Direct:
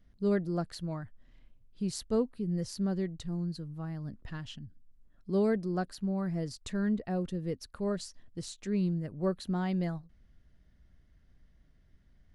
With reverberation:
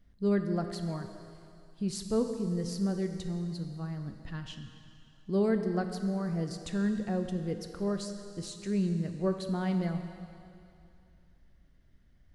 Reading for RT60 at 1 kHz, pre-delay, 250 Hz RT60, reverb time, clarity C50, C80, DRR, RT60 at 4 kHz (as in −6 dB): 2.6 s, 5 ms, 2.3 s, 2.6 s, 7.0 dB, 8.0 dB, 6.0 dB, 2.6 s